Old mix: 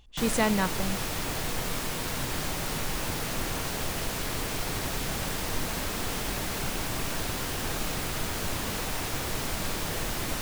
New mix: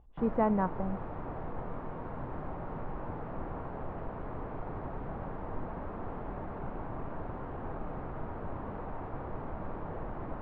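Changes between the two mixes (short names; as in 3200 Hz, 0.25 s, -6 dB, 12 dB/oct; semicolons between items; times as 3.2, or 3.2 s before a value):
speech +3.5 dB; master: add ladder low-pass 1300 Hz, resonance 25%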